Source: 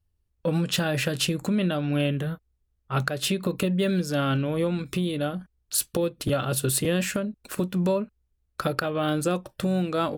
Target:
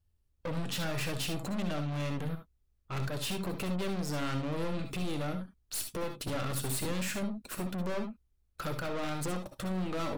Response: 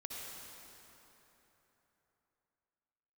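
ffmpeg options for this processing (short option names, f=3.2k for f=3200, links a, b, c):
-filter_complex "[0:a]aeval=exprs='(tanh(44.7*val(0)+0.4)-tanh(0.4))/44.7':c=same[a];[1:a]atrim=start_sample=2205,atrim=end_sample=3528[b];[a][b]afir=irnorm=-1:irlink=0,volume=5.5dB"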